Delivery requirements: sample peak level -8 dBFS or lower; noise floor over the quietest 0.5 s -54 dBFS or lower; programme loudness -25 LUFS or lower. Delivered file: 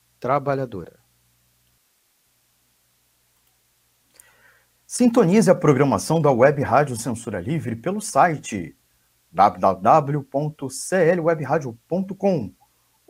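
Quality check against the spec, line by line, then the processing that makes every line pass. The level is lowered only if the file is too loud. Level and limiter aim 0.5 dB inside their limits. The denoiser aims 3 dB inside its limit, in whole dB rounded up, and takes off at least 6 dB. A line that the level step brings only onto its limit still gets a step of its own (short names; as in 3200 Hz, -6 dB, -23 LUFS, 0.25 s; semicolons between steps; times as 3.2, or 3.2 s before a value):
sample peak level -2.5 dBFS: fail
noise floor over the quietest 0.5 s -65 dBFS: OK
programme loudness -20.0 LUFS: fail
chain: gain -5.5 dB; limiter -8.5 dBFS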